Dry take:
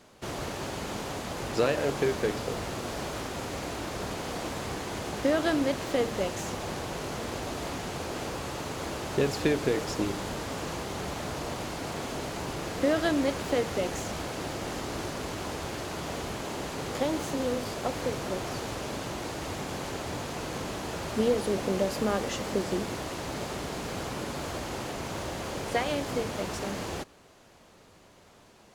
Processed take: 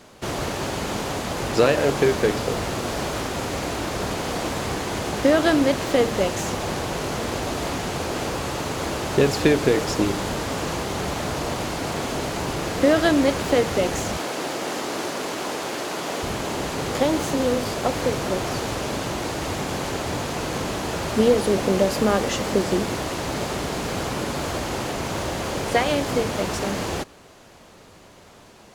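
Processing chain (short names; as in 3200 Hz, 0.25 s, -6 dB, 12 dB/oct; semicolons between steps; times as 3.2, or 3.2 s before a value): 14.17–16.23 HPF 250 Hz 12 dB/oct; gain +8 dB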